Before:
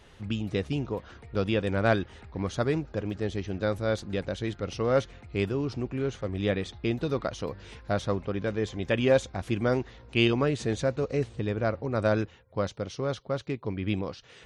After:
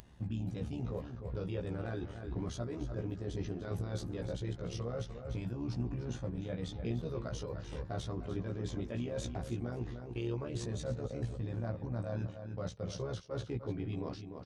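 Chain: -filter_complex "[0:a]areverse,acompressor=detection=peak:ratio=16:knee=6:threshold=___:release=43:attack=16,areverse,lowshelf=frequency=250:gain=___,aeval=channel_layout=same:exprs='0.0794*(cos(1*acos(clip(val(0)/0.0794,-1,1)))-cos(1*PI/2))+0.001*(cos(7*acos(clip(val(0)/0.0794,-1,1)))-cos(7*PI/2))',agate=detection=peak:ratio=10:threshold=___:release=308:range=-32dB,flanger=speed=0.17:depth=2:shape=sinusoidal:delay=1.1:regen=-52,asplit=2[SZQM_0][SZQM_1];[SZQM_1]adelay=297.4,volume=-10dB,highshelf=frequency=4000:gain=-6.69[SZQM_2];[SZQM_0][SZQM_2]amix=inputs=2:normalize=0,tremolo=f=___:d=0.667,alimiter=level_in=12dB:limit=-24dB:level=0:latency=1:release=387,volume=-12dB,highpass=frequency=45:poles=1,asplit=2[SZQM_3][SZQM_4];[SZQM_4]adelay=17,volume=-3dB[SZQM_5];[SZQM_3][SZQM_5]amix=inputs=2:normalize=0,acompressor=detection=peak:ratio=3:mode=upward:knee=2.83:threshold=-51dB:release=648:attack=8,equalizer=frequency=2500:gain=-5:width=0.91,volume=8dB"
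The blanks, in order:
-39dB, 8.5, -39dB, 74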